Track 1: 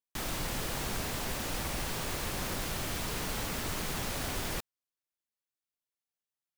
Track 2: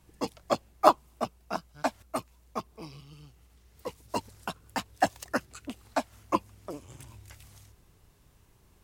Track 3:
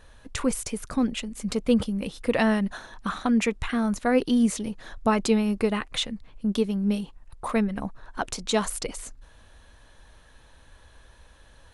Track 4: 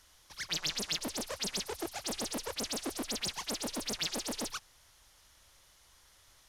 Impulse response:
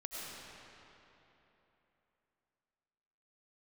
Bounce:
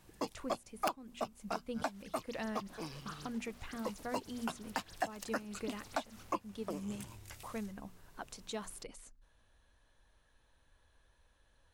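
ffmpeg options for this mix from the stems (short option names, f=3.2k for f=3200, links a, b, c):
-filter_complex "[0:a]aemphasis=mode=reproduction:type=cd,asoftclip=type=tanh:threshold=-38.5dB,adelay=2200,volume=-19.5dB[a];[1:a]highpass=f=140:p=1,aeval=exprs='(mod(2.24*val(0)+1,2)-1)/2.24':c=same,volume=1dB[b];[2:a]bandreject=f=60:t=h:w=6,bandreject=f=120:t=h:w=6,bandreject=f=180:t=h:w=6,bandreject=f=240:t=h:w=6,volume=-16.5dB[c];[3:a]adelay=1650,volume=-20dB[d];[a][b][c][d]amix=inputs=4:normalize=0,acompressor=threshold=-35dB:ratio=4"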